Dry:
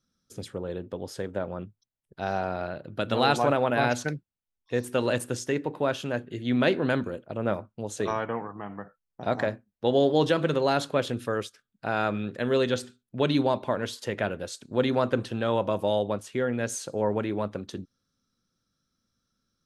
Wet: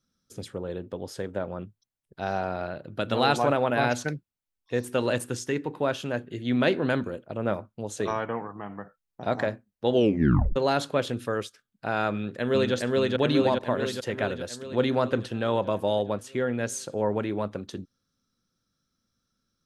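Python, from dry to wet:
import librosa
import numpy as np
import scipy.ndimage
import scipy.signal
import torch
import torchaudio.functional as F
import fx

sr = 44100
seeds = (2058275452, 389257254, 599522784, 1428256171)

y = fx.peak_eq(x, sr, hz=610.0, db=-8.5, octaves=0.39, at=(5.24, 5.81))
y = fx.echo_throw(y, sr, start_s=12.12, length_s=0.62, ms=420, feedback_pct=65, wet_db=-0.5)
y = fx.edit(y, sr, fx.tape_stop(start_s=9.92, length_s=0.64), tone=tone)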